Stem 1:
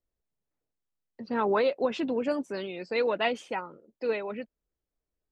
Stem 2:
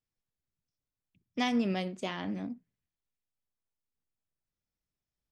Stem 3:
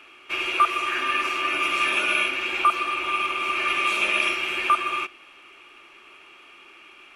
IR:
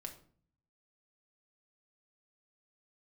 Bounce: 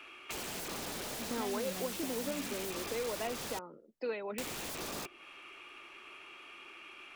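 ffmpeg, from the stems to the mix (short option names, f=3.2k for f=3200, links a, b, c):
-filter_complex "[0:a]highpass=160,volume=-2.5dB[a];[1:a]volume=-3.5dB[b];[2:a]aeval=exprs='(mod(16.8*val(0)+1,2)-1)/16.8':c=same,volume=-3dB,asplit=3[c][d][e];[c]atrim=end=3.59,asetpts=PTS-STARTPTS,afade=t=out:st=3.586:d=0.004:c=hsin[f];[d]atrim=start=3.59:end=4.38,asetpts=PTS-STARTPTS,volume=0[g];[e]atrim=start=4.38,asetpts=PTS-STARTPTS,afade=t=in:d=0.004:c=hsin[h];[f][g][h]concat=n=3:v=0:a=1[i];[a][b][i]amix=inputs=3:normalize=0,acrossover=split=160|730[j][k][l];[j]acompressor=threshold=-55dB:ratio=4[m];[k]acompressor=threshold=-37dB:ratio=4[n];[l]acompressor=threshold=-42dB:ratio=4[o];[m][n][o]amix=inputs=3:normalize=0"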